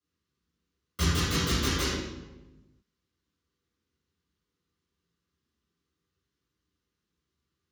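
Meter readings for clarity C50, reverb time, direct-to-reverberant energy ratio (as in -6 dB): -1.5 dB, 1.1 s, -10.5 dB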